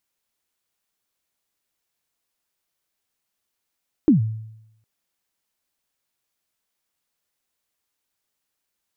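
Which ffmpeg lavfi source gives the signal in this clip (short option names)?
-f lavfi -i "aevalsrc='0.376*pow(10,-3*t/0.83)*sin(2*PI*(340*0.124/log(110/340)*(exp(log(110/340)*min(t,0.124)/0.124)-1)+110*max(t-0.124,0)))':d=0.76:s=44100"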